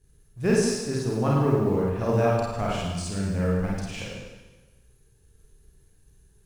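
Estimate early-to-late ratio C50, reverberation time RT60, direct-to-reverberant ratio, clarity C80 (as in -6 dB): -2.0 dB, 1.2 s, -5.0 dB, 1.5 dB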